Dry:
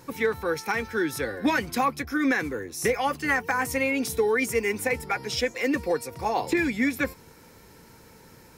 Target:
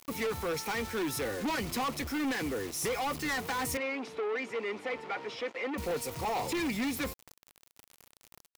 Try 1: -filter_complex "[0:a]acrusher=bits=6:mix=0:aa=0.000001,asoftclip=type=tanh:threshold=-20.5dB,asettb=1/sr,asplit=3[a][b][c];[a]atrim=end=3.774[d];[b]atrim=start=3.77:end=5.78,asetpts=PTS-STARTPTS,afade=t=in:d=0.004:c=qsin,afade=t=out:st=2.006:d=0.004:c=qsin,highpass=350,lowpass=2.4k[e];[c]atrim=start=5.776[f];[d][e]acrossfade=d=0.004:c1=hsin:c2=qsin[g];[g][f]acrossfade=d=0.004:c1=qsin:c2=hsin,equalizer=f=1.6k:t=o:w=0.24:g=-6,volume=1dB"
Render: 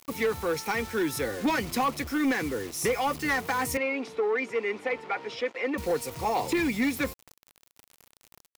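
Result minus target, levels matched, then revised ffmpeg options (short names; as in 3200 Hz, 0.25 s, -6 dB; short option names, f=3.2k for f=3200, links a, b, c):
soft clip: distortion -9 dB
-filter_complex "[0:a]acrusher=bits=6:mix=0:aa=0.000001,asoftclip=type=tanh:threshold=-30dB,asettb=1/sr,asplit=3[a][b][c];[a]atrim=end=3.774[d];[b]atrim=start=3.77:end=5.78,asetpts=PTS-STARTPTS,afade=t=in:d=0.004:c=qsin,afade=t=out:st=2.006:d=0.004:c=qsin,highpass=350,lowpass=2.4k[e];[c]atrim=start=5.776[f];[d][e]acrossfade=d=0.004:c1=hsin:c2=qsin[g];[g][f]acrossfade=d=0.004:c1=qsin:c2=hsin,equalizer=f=1.6k:t=o:w=0.24:g=-6,volume=1dB"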